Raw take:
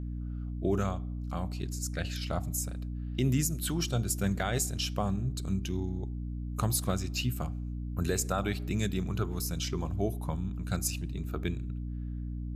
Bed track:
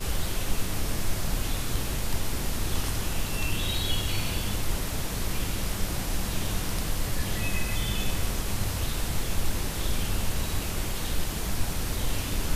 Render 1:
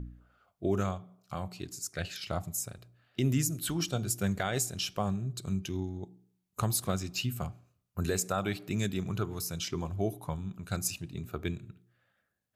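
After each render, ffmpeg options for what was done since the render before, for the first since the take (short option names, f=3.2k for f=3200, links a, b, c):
-af "bandreject=f=60:t=h:w=4,bandreject=f=120:t=h:w=4,bandreject=f=180:t=h:w=4,bandreject=f=240:t=h:w=4,bandreject=f=300:t=h:w=4"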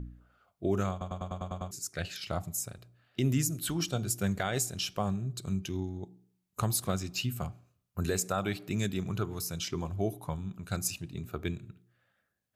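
-filter_complex "[0:a]asplit=9[a][b][c][d][e][f][g][h][i];[a]atrim=end=1.012[j];[b]atrim=start=0.908:end=1.012[k];[c]atrim=start=0.908:end=1.012[l];[d]atrim=start=0.908:end=1.012[m];[e]atrim=start=0.908:end=1.012[n];[f]atrim=start=0.908:end=1.012[o];[g]atrim=start=0.908:end=1.012[p];[h]atrim=start=0.908:end=1.012[q];[i]atrim=start=1.708[r];[j][k]acrossfade=d=0.004:c1=hsin:c2=hsin[s];[s][l]acrossfade=d=0.004:c1=hsin:c2=hsin[t];[t][m]acrossfade=d=0.004:c1=hsin:c2=hsin[u];[u][n]acrossfade=d=0.004:c1=hsin:c2=hsin[v];[v][o]acrossfade=d=0.004:c1=hsin:c2=hsin[w];[w][p]acrossfade=d=0.004:c1=hsin:c2=hsin[x];[x][q]acrossfade=d=0.004:c1=hsin:c2=hsin[y];[y][r]acrossfade=d=0.004:c1=hsin:c2=hsin"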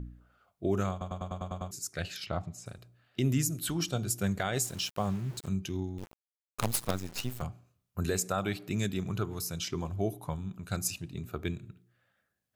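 -filter_complex "[0:a]asettb=1/sr,asplit=3[a][b][c];[a]atrim=end=2.264[d];[b]atrim=start=2.26:end=2.66,asetpts=PTS-STARTPTS,afade=t=in:d=0.004:c=qsin,afade=t=out:st=0.396:d=0.004:c=qsin,lowpass=3.8k[e];[c]atrim=start=2.656[f];[d][e]acrossfade=d=0.004:c1=hsin:c2=qsin[g];[g][f]acrossfade=d=0.004:c1=qsin:c2=hsin,asettb=1/sr,asplit=3[h][i][j];[h]atrim=end=4.644[k];[i]atrim=start=4.64:end=5.48,asetpts=PTS-STARTPTS,afade=t=in:d=0.004:c=qsin,afade=t=out:st=0.836:d=0.004:c=qsin,aeval=exprs='val(0)*gte(abs(val(0)),0.00631)':c=same[l];[j]atrim=start=5.476[m];[k][l]acrossfade=d=0.004:c1=hsin:c2=qsin[n];[n][m]acrossfade=d=0.004:c1=qsin:c2=hsin,asettb=1/sr,asplit=3[o][p][q];[o]atrim=end=5.984[r];[p]atrim=start=5.98:end=7.42,asetpts=PTS-STARTPTS,afade=t=in:d=0.004:c=qsin,afade=t=out:st=1.436:d=0.004:c=qsin,acrusher=bits=5:dc=4:mix=0:aa=0.000001[s];[q]atrim=start=7.416[t];[r][s]acrossfade=d=0.004:c1=hsin:c2=qsin[u];[u][t]acrossfade=d=0.004:c1=qsin:c2=hsin"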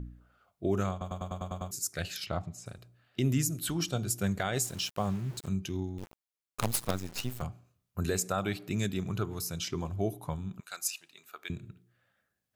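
-filter_complex "[0:a]asettb=1/sr,asplit=3[a][b][c];[a]atrim=end=1.044[d];[b]atrim=start=1.04:end=2.39,asetpts=PTS-STARTPTS,afade=t=in:d=0.004:c=qsin,afade=t=out:st=1.346:d=0.004:c=qsin,highshelf=f=7.8k:g=9[e];[c]atrim=start=2.386[f];[d][e]acrossfade=d=0.004:c1=hsin:c2=qsin[g];[g][f]acrossfade=d=0.004:c1=qsin:c2=hsin,asettb=1/sr,asplit=3[h][i][j];[h]atrim=end=10.604[k];[i]atrim=start=10.6:end=11.5,asetpts=PTS-STARTPTS,afade=t=in:d=0.004:c=qsin,afade=t=out:st=0.896:d=0.004:c=qsin,highpass=1.1k[l];[j]atrim=start=11.496[m];[k][l]acrossfade=d=0.004:c1=hsin:c2=qsin[n];[n][m]acrossfade=d=0.004:c1=qsin:c2=hsin"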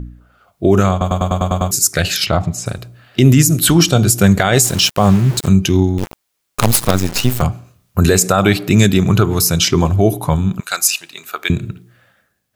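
-af "dynaudnorm=f=110:g=11:m=9.5dB,alimiter=level_in=12.5dB:limit=-1dB:release=50:level=0:latency=1"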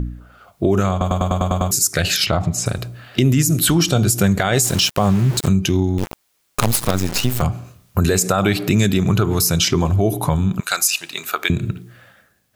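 -filter_complex "[0:a]asplit=2[a][b];[b]alimiter=limit=-12dB:level=0:latency=1:release=70,volume=-0.5dB[c];[a][c]amix=inputs=2:normalize=0,acompressor=threshold=-18dB:ratio=2"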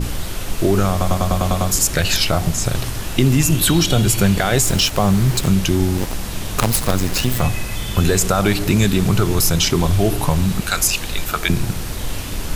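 -filter_complex "[1:a]volume=3.5dB[a];[0:a][a]amix=inputs=2:normalize=0"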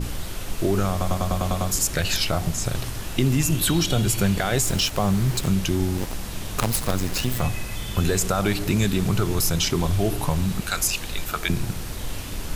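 -af "volume=-6dB"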